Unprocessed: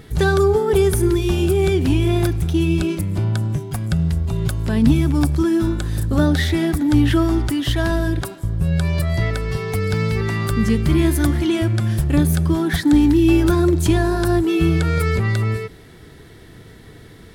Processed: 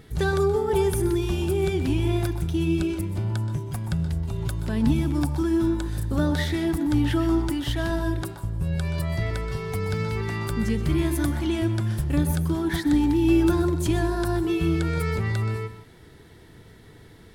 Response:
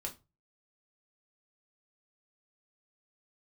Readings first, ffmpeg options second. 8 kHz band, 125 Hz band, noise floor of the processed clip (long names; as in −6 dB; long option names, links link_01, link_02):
−7.0 dB, −7.0 dB, −49 dBFS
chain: -filter_complex "[0:a]asplit=2[link_01][link_02];[link_02]equalizer=frequency=900:width_type=o:width=0.38:gain=13.5[link_03];[1:a]atrim=start_sample=2205,adelay=125[link_04];[link_03][link_04]afir=irnorm=-1:irlink=0,volume=-10.5dB[link_05];[link_01][link_05]amix=inputs=2:normalize=0,volume=-7dB"